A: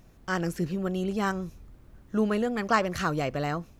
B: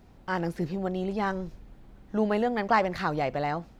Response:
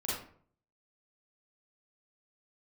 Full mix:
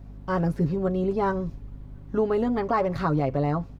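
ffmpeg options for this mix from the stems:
-filter_complex "[0:a]lowpass=1100,aecho=1:1:7.1:0.91,aeval=exprs='val(0)+0.00708*(sin(2*PI*50*n/s)+sin(2*PI*2*50*n/s)/2+sin(2*PI*3*50*n/s)/3+sin(2*PI*4*50*n/s)/4+sin(2*PI*5*50*n/s)/5)':channel_layout=same,volume=2dB[link_01];[1:a]volume=-3dB[link_02];[link_01][link_02]amix=inputs=2:normalize=0,alimiter=limit=-14.5dB:level=0:latency=1:release=105"

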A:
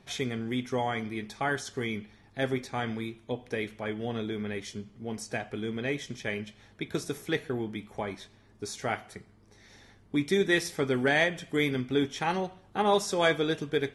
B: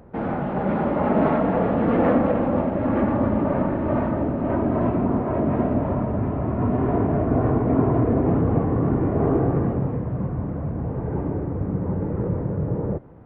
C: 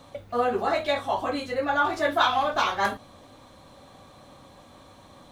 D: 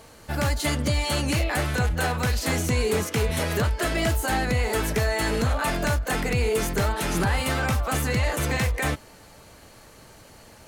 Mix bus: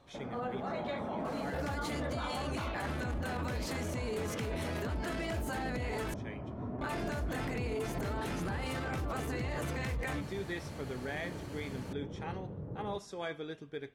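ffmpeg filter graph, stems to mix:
ffmpeg -i stem1.wav -i stem2.wav -i stem3.wav -i stem4.wav -filter_complex "[0:a]volume=-13.5dB[link_01];[1:a]volume=-18dB[link_02];[2:a]volume=-12.5dB[link_03];[3:a]alimiter=level_in=3dB:limit=-24dB:level=0:latency=1,volume=-3dB,highpass=52,adelay=1250,volume=1dB,asplit=3[link_04][link_05][link_06];[link_04]atrim=end=6.14,asetpts=PTS-STARTPTS,afade=type=out:start_time=6.136:duration=0.004:curve=hsin[link_07];[link_05]atrim=start=6.14:end=6.81,asetpts=PTS-STARTPTS,volume=0[link_08];[link_06]atrim=start=6.81,asetpts=PTS-STARTPTS,afade=type=in:duration=0.004:curve=hsin[link_09];[link_07][link_08][link_09]concat=n=3:v=0:a=1[link_10];[link_01][link_02][link_03][link_10]amix=inputs=4:normalize=0,highshelf=frequency=5500:gain=-9,alimiter=level_in=4.5dB:limit=-24dB:level=0:latency=1:release=17,volume=-4.5dB" out.wav

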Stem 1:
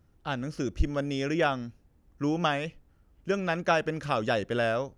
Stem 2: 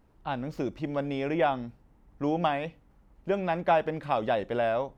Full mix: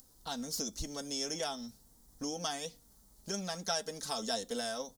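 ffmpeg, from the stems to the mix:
ffmpeg -i stem1.wav -i stem2.wav -filter_complex "[0:a]acompressor=mode=upward:threshold=-46dB:ratio=2.5,volume=-11.5dB[link_01];[1:a]acompressor=threshold=-36dB:ratio=2.5,adelay=4.3,volume=-1dB,asplit=2[link_02][link_03];[link_03]apad=whole_len=219340[link_04];[link_01][link_04]sidechaingate=range=-33dB:threshold=-50dB:ratio=16:detection=peak[link_05];[link_05][link_02]amix=inputs=2:normalize=0,flanger=delay=3.8:depth=1.4:regen=64:speed=0.42:shape=triangular,aexciter=amount=9.6:drive=9.4:freq=4000" out.wav

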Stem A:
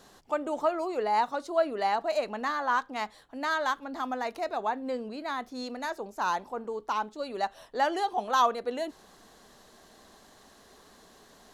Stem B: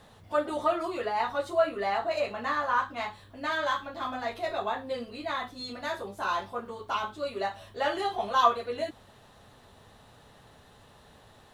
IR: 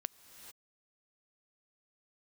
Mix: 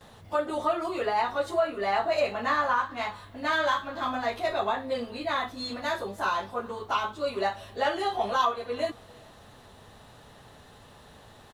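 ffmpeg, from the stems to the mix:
-filter_complex "[0:a]volume=-14dB[link_01];[1:a]alimiter=limit=-19dB:level=0:latency=1:release=394,adelay=8.4,volume=1.5dB,asplit=2[link_02][link_03];[link_03]volume=-8.5dB[link_04];[2:a]atrim=start_sample=2205[link_05];[link_04][link_05]afir=irnorm=-1:irlink=0[link_06];[link_01][link_02][link_06]amix=inputs=3:normalize=0"

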